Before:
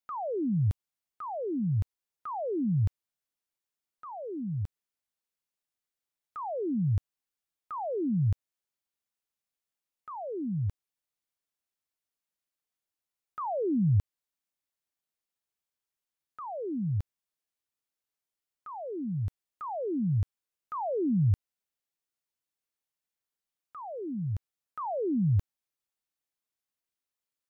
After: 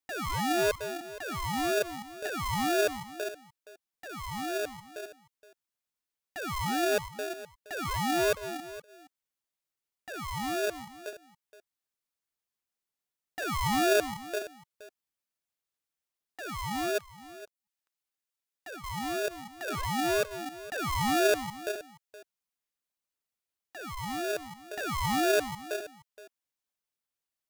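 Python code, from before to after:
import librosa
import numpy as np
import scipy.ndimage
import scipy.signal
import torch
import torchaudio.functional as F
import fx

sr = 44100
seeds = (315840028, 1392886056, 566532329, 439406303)

y = fx.reverse_delay(x, sr, ms=253, wet_db=-9)
y = fx.highpass(y, sr, hz=840.0, slope=24, at=(16.98, 18.84))
y = fx.dereverb_blind(y, sr, rt60_s=0.51)
y = y + 10.0 ** (-16.5 / 20.0) * np.pad(y, (int(470 * sr / 1000.0), 0))[:len(y)]
y = y * np.sign(np.sin(2.0 * np.pi * 520.0 * np.arange(len(y)) / sr))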